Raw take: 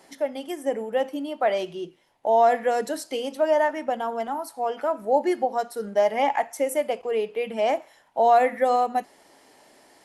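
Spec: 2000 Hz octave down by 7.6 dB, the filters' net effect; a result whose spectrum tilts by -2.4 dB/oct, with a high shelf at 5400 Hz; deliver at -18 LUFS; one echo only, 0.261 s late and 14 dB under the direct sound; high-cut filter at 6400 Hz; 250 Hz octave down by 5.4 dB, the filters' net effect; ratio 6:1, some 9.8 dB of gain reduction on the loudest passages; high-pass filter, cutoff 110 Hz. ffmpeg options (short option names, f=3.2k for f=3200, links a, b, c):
-af "highpass=110,lowpass=6.4k,equalizer=f=250:t=o:g=-7,equalizer=f=2k:t=o:g=-8.5,highshelf=f=5.4k:g=-4.5,acompressor=threshold=-26dB:ratio=6,aecho=1:1:261:0.2,volume=14dB"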